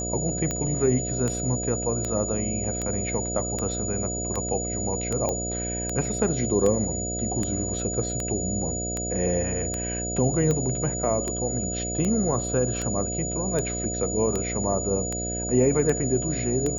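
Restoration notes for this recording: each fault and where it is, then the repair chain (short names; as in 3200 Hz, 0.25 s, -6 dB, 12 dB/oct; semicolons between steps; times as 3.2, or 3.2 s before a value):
buzz 60 Hz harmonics 12 -32 dBFS
tick 78 rpm -14 dBFS
tone 6900 Hz -30 dBFS
5.29 pop -14 dBFS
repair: de-click; de-hum 60 Hz, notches 12; notch 6900 Hz, Q 30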